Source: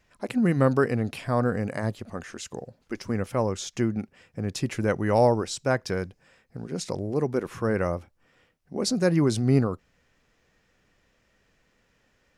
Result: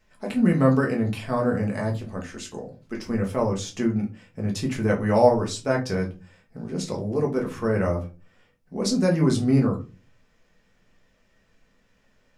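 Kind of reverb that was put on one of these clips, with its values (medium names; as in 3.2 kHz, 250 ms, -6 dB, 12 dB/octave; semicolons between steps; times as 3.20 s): simulated room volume 120 m³, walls furnished, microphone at 1.5 m; trim -2.5 dB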